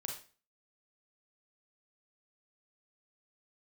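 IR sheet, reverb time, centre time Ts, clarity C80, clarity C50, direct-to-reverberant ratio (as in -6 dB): 0.40 s, 28 ms, 11.0 dB, 5.0 dB, 0.5 dB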